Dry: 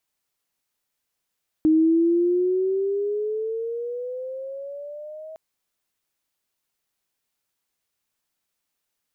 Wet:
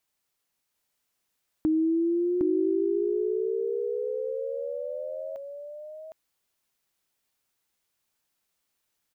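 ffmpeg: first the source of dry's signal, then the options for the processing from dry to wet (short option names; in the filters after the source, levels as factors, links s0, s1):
-f lavfi -i "aevalsrc='pow(10,(-13.5-22*t/3.71)/20)*sin(2*PI*311*3.71/(12.5*log(2)/12)*(exp(12.5*log(2)/12*t/3.71)-1))':d=3.71:s=44100"
-af "acompressor=threshold=0.02:ratio=1.5,aecho=1:1:760:0.631"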